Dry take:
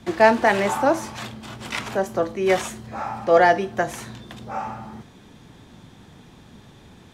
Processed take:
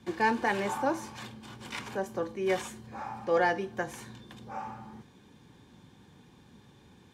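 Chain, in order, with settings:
notch comb filter 660 Hz
level −8.5 dB

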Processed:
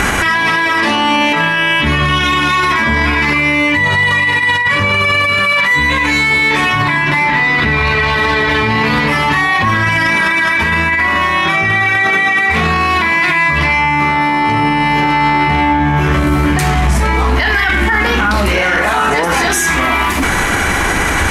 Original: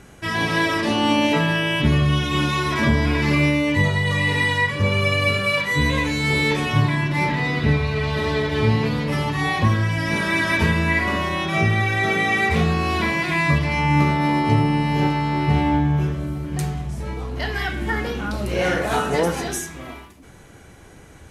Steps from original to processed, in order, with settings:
graphic EQ with 10 bands 125 Hz −9 dB, 500 Hz −5 dB, 1,000 Hz +6 dB, 2,000 Hz +7 dB
compressor whose output falls as the input rises −24 dBFS, ratio −0.5
boost into a limiter +33.5 dB
level −4 dB

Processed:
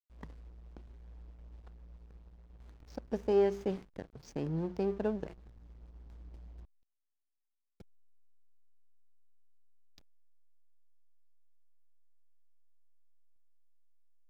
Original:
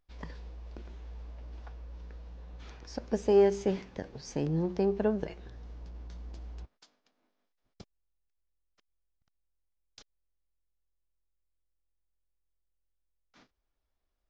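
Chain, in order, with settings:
slack as between gear wheels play −39.5 dBFS
level −4.5 dB

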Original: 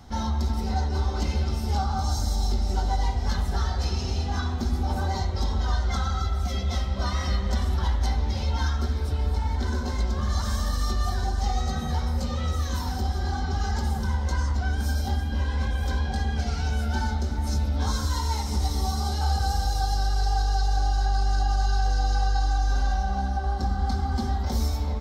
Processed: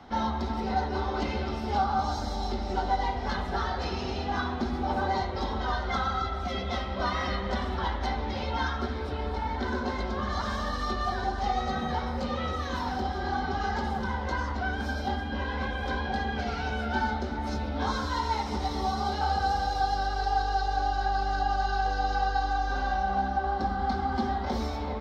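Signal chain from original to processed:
three-way crossover with the lows and the highs turned down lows −14 dB, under 220 Hz, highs −23 dB, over 3,900 Hz
level +4 dB

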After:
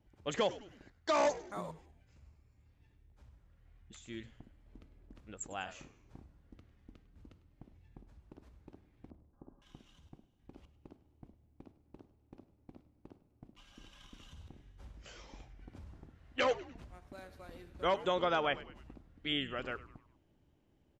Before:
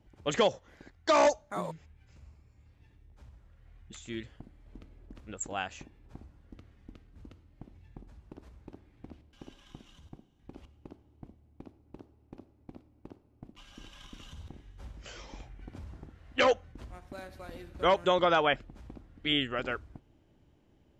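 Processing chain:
0:05.64–0:06.20: double-tracking delay 34 ms −4.5 dB
0:09.10–0:09.62: Butterworth low-pass 1,200 Hz 36 dB per octave
echo with shifted repeats 101 ms, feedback 47%, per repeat −110 Hz, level −17 dB
level −6.5 dB

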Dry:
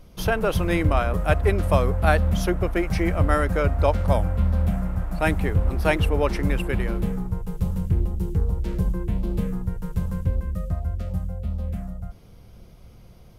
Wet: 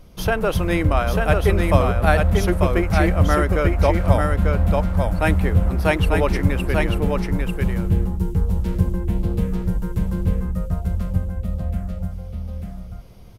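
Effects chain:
single-tap delay 893 ms −3.5 dB
level +2 dB

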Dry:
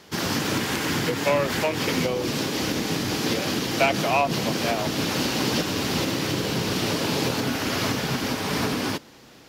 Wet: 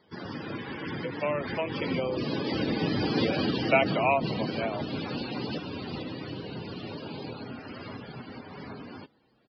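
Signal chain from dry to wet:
source passing by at 0:03.20, 12 m/s, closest 11 metres
spectral peaks only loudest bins 64
downsampling to 11,025 Hz

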